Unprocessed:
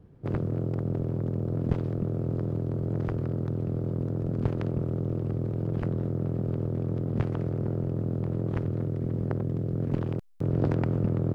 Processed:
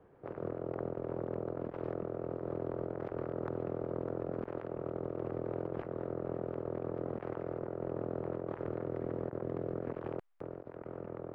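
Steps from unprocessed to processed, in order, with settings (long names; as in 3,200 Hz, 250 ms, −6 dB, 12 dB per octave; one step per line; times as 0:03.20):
three-way crossover with the lows and the highs turned down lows −21 dB, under 420 Hz, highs −21 dB, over 2,300 Hz
compressor whose output falls as the input rises −43 dBFS, ratio −0.5
level +4 dB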